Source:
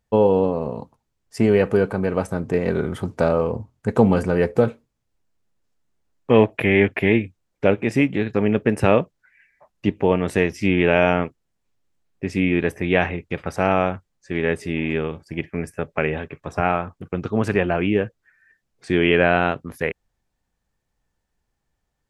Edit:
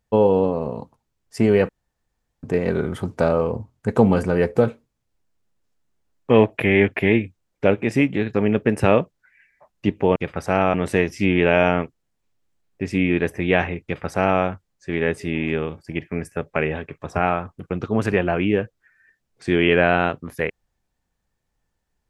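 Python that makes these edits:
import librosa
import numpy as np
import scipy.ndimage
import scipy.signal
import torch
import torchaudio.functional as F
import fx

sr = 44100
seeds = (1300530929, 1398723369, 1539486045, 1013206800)

y = fx.edit(x, sr, fx.room_tone_fill(start_s=1.69, length_s=0.74),
    fx.duplicate(start_s=13.26, length_s=0.58, to_s=10.16), tone=tone)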